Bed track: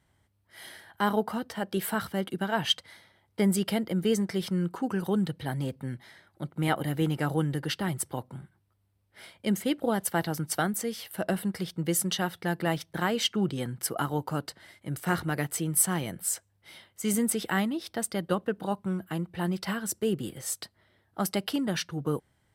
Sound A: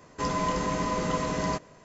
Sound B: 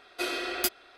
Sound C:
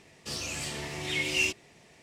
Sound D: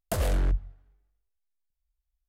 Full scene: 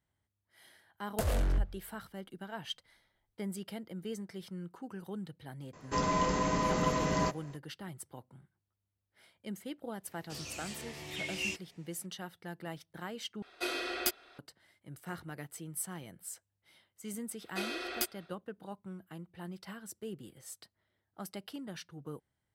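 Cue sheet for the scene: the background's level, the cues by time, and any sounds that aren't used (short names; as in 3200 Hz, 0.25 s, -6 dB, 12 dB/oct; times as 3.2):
bed track -14.5 dB
1.07 add D -4.5 dB
5.73 add A -2 dB
10.04 add C -9 dB
13.42 replace with B -4 dB
17.37 add B -6.5 dB, fades 0.10 s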